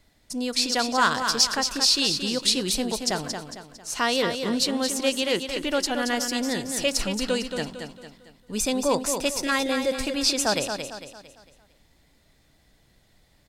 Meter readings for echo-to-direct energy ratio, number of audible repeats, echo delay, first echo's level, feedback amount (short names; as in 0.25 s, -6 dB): -6.0 dB, 4, 0.226 s, -7.0 dB, 41%